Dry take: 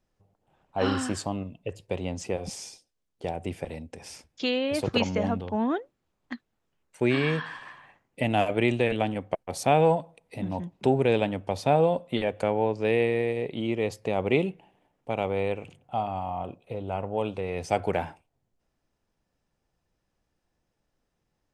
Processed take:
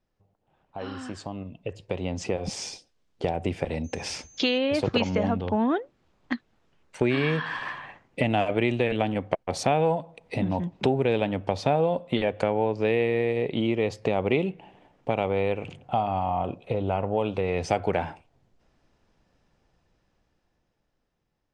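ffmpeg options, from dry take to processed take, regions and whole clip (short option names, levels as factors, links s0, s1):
-filter_complex "[0:a]asettb=1/sr,asplit=3[s0][s1][s2];[s0]atrim=end=3.844[s3];[s1]atrim=start=3.84:end=4.58,asetpts=PTS-STARTPTS,afade=t=in:d=0.004:c=qsin,afade=t=out:st=0.736:d=0.004:c=qsin,equalizer=f=4200:w=0.41:g=2.5,aeval=exprs='val(0)+0.00126*sin(2*PI*6300*n/s)':c=same[s4];[s2]atrim=start=4.576[s5];[s3][s4]acrossfade=d=0.004:c1=hsin:c2=qsin[s6];[s6][s5]acrossfade=d=0.004:c1=qsin:c2=hsin,acompressor=threshold=0.0141:ratio=2.5,lowpass=5500,dynaudnorm=f=290:g=13:m=4.47,volume=0.841"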